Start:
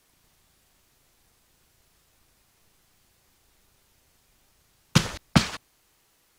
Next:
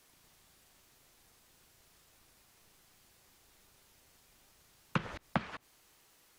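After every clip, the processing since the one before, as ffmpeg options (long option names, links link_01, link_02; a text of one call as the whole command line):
ffmpeg -i in.wav -filter_complex "[0:a]acrossover=split=2700[link_01][link_02];[link_02]acompressor=threshold=-56dB:ratio=4:attack=1:release=60[link_03];[link_01][link_03]amix=inputs=2:normalize=0,lowshelf=frequency=140:gain=-5.5,acompressor=threshold=-29dB:ratio=10" out.wav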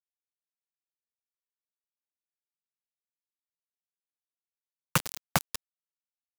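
ffmpeg -i in.wav -af "equalizer=frequency=250:width_type=o:width=0.81:gain=-10.5,acrusher=bits=5:mix=0:aa=0.000001,bass=frequency=250:gain=1,treble=frequency=4000:gain=10,volume=6.5dB" out.wav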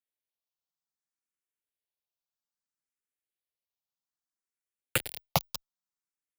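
ffmpeg -i in.wav -filter_complex "[0:a]asplit=2[link_01][link_02];[link_02]afreqshift=0.61[link_03];[link_01][link_03]amix=inputs=2:normalize=1,volume=2dB" out.wav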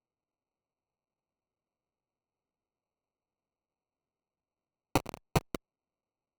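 ffmpeg -i in.wav -af "acrusher=samples=26:mix=1:aa=0.000001" out.wav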